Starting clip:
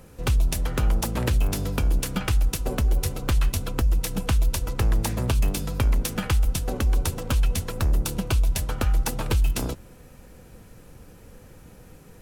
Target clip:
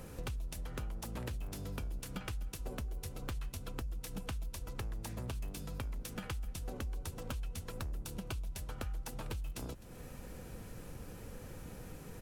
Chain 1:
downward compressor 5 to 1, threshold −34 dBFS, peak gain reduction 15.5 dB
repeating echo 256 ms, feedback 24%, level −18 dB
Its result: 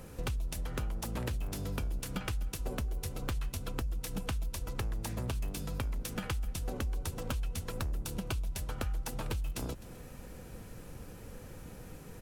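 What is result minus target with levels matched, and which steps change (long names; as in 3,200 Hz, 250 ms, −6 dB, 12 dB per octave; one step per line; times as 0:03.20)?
downward compressor: peak gain reduction −5 dB
change: downward compressor 5 to 1, threshold −40.5 dBFS, peak gain reduction 20.5 dB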